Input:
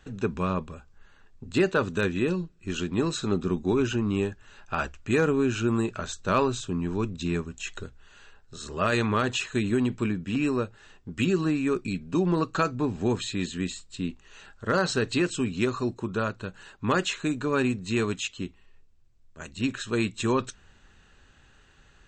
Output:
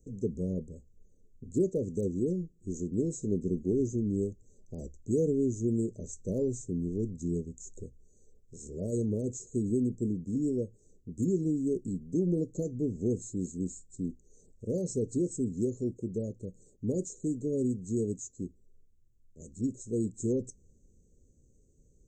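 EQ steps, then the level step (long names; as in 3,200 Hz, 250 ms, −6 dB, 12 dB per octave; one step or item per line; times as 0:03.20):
Chebyshev band-stop filter 510–6,400 Hz, order 4
−3.5 dB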